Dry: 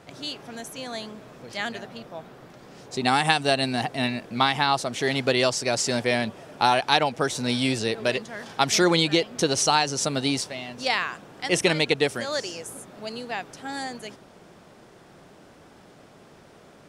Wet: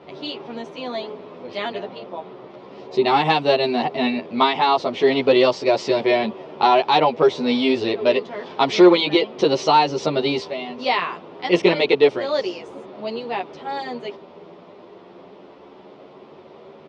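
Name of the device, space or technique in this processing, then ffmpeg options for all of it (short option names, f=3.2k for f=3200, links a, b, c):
barber-pole flanger into a guitar amplifier: -filter_complex "[0:a]asplit=2[a][b];[b]adelay=10.5,afreqshift=0.3[c];[a][c]amix=inputs=2:normalize=1,asoftclip=type=tanh:threshold=-14dB,highpass=110,equalizer=f=120:t=q:w=4:g=-9,equalizer=f=390:t=q:w=4:g=9,equalizer=f=570:t=q:w=4:g=4,equalizer=f=980:t=q:w=4:g=6,equalizer=f=1.6k:t=q:w=4:g=-9,lowpass=f=4k:w=0.5412,lowpass=f=4k:w=1.3066,volume=7dB"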